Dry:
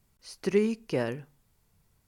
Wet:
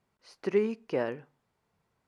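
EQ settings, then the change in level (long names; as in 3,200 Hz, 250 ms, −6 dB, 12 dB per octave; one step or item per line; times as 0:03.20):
resonant band-pass 800 Hz, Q 0.5
+1.0 dB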